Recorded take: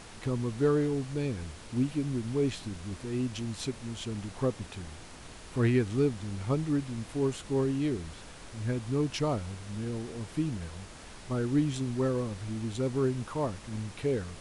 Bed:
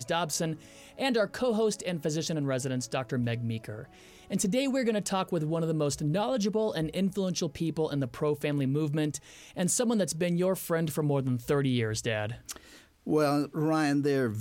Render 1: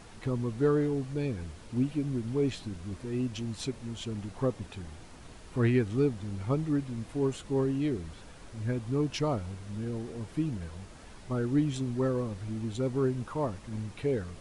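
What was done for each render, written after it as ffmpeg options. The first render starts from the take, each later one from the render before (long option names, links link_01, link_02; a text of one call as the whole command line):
ffmpeg -i in.wav -af "afftdn=noise_reduction=6:noise_floor=-48" out.wav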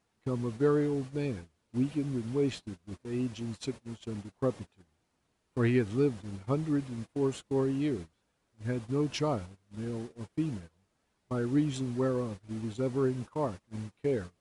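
ffmpeg -i in.wav -af "highpass=frequency=110:poles=1,agate=range=-25dB:threshold=-38dB:ratio=16:detection=peak" out.wav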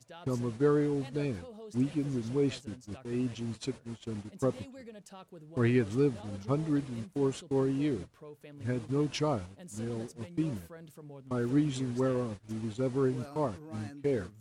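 ffmpeg -i in.wav -i bed.wav -filter_complex "[1:a]volume=-20.5dB[link_01];[0:a][link_01]amix=inputs=2:normalize=0" out.wav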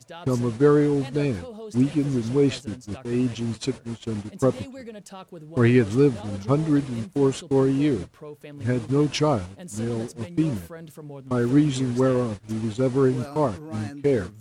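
ffmpeg -i in.wav -af "volume=9dB" out.wav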